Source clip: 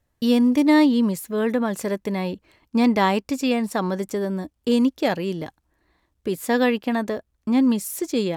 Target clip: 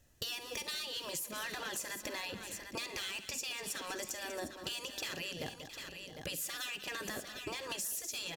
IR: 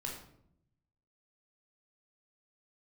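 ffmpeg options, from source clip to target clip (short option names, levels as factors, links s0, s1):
-af "afftfilt=real='re*lt(hypot(re,im),0.178)':imag='im*lt(hypot(re,im),0.178)':win_size=1024:overlap=0.75,volume=31.6,asoftclip=hard,volume=0.0316,equalizer=f=1000:t=o:w=0.67:g=-6,equalizer=f=2500:t=o:w=0.67:g=6,equalizer=f=6300:t=o:w=0.67:g=7,alimiter=level_in=1.5:limit=0.0631:level=0:latency=1:release=365,volume=0.668,highshelf=f=6900:g=5.5,bandreject=f=2200:w=7.6,aecho=1:1:49|67|191|667|751:0.158|0.1|0.178|0.1|0.211,acompressor=threshold=0.00891:ratio=6,volume=1.5"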